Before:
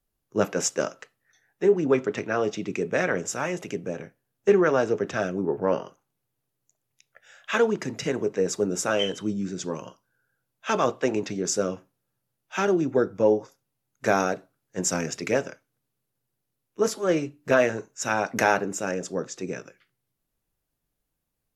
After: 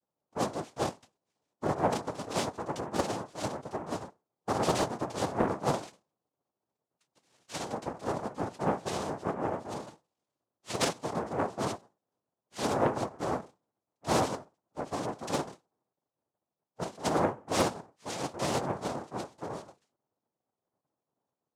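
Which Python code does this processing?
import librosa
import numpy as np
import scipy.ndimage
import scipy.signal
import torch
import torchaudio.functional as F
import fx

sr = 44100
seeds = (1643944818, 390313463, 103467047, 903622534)

y = fx.octave_resonator(x, sr, note='D', decay_s=0.16)
y = fx.noise_vocoder(y, sr, seeds[0], bands=2)
y = fx.doppler_dist(y, sr, depth_ms=0.52)
y = F.gain(torch.from_numpy(y), 6.5).numpy()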